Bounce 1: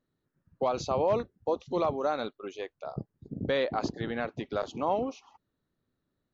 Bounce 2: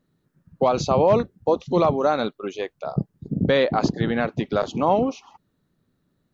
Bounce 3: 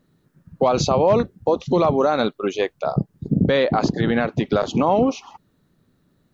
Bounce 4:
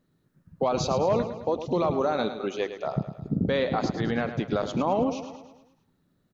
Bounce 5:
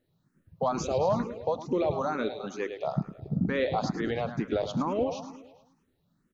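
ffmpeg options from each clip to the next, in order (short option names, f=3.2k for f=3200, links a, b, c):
-af "equalizer=f=170:w=1.6:g=7,volume=8.5dB"
-af "alimiter=limit=-15dB:level=0:latency=1:release=146,volume=7dB"
-af "aecho=1:1:107|214|321|428|535|642:0.299|0.158|0.0839|0.0444|0.0236|0.0125,volume=-7.5dB"
-filter_complex "[0:a]asplit=2[a][b];[b]afreqshift=2.2[c];[a][c]amix=inputs=2:normalize=1"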